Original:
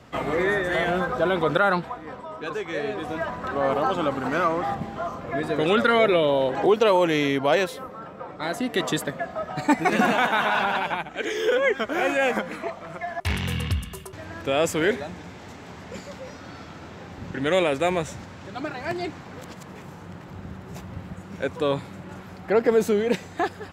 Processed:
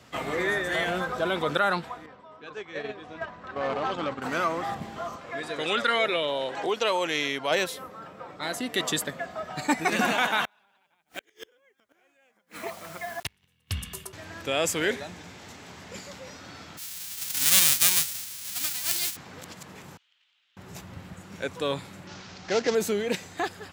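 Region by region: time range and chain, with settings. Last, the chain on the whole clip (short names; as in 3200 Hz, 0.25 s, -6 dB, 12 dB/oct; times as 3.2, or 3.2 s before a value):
2.06–4.22 gate -29 dBFS, range -7 dB + overloaded stage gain 17.5 dB + air absorption 120 m
5.16–7.51 LPF 9600 Hz + low shelf 360 Hz -9.5 dB
10.44–13.71 requantised 8-bit, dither none + flipped gate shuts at -18 dBFS, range -39 dB
16.77–19.15 spectral whitening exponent 0.1 + bell 500 Hz -8.5 dB 2.6 oct
19.97–20.57 ladder band-pass 3500 Hz, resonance 60% + high shelf 3600 Hz -11 dB
22.07–22.75 CVSD 32 kbps + high shelf 3000 Hz +7.5 dB
whole clip: HPF 53 Hz; high shelf 2200 Hz +10.5 dB; gain -6 dB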